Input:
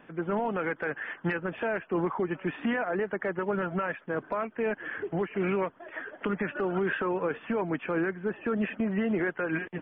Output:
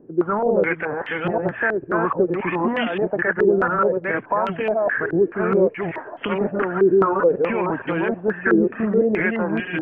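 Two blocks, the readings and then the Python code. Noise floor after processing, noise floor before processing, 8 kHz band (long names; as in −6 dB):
−39 dBFS, −56 dBFS, can't be measured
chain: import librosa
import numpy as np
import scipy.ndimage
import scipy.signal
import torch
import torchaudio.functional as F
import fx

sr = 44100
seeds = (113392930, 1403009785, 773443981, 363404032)

y = fx.reverse_delay(x, sr, ms=460, wet_db=-1.0)
y = fx.peak_eq(y, sr, hz=120.0, db=7.5, octaves=0.23)
y = fx.filter_held_lowpass(y, sr, hz=4.7, low_hz=380.0, high_hz=3100.0)
y = y * librosa.db_to_amplitude(3.5)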